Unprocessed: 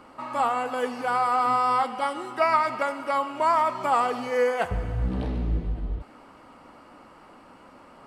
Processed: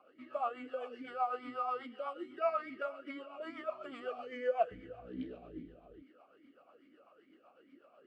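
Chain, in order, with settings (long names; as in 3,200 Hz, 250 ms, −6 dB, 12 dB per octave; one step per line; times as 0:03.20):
rotating-speaker cabinet horn 8 Hz
formant filter swept between two vowels a-i 2.4 Hz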